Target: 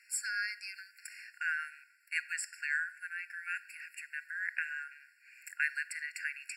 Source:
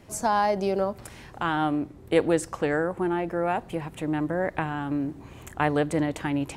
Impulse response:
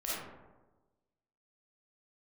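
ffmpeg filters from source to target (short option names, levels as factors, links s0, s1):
-filter_complex "[0:a]asettb=1/sr,asplit=3[s0][s1][s2];[s0]atrim=end=4.844[s3];[s1]atrim=start=4.84:end=5.44,asetpts=PTS-STARTPTS,afade=t=in:d=0.004:c=qsin,afade=t=out:st=0.596:d=0.004:c=qsin,highshelf=f=4800:g=-4.5[s4];[s2]atrim=start=5.436[s5];[s3][s4]acrossfade=d=0.004:c1=hsin:c2=qsin[s6];[s6][s5]acrossfade=d=0.004:c1=qsin:c2=hsin,asplit=2[s7][s8];[1:a]atrim=start_sample=2205[s9];[s8][s9]afir=irnorm=-1:irlink=0,volume=0.1[s10];[s7][s10]amix=inputs=2:normalize=0,afftfilt=real='re*eq(mod(floor(b*sr/1024/1400),2),1)':imag='im*eq(mod(floor(b*sr/1024/1400),2),1)':win_size=1024:overlap=0.75"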